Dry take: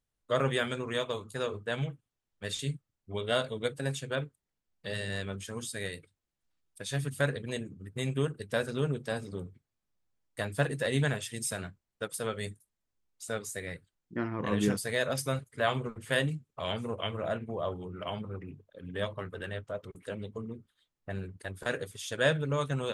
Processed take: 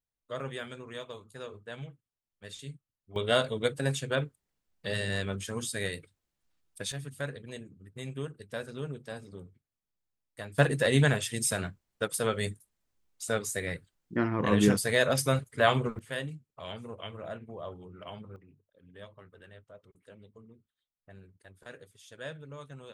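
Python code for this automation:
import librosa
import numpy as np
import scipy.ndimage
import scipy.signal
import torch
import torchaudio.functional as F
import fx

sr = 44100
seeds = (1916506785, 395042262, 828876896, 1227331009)

y = fx.gain(x, sr, db=fx.steps((0.0, -9.0), (3.16, 3.5), (6.92, -7.0), (10.58, 5.0), (15.99, -7.0), (18.36, -14.5)))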